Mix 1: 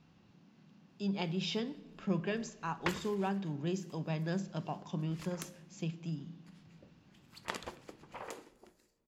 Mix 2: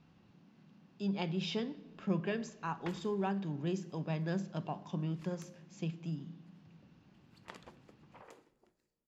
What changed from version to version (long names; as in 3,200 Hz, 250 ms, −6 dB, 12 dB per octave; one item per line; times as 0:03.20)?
background −10.5 dB
master: add high-shelf EQ 5,200 Hz −7 dB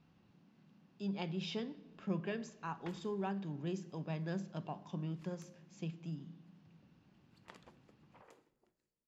speech −4.0 dB
background −6.0 dB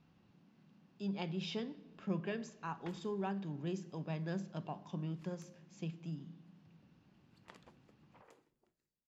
background: send −8.5 dB